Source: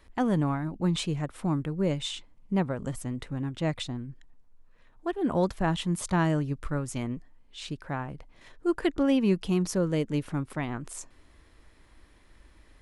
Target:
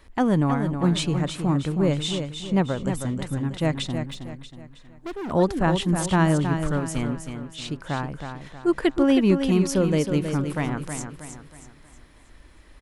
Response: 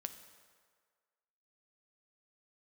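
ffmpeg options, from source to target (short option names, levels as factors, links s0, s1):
-filter_complex "[0:a]aecho=1:1:318|636|954|1272|1590:0.422|0.173|0.0709|0.0291|0.0119,asplit=3[s0][s1][s2];[s0]afade=t=out:st=4.04:d=0.02[s3];[s1]volume=56.2,asoftclip=hard,volume=0.0178,afade=t=in:st=4.04:d=0.02,afade=t=out:st=5.3:d=0.02[s4];[s2]afade=t=in:st=5.3:d=0.02[s5];[s3][s4][s5]amix=inputs=3:normalize=0,volume=1.78"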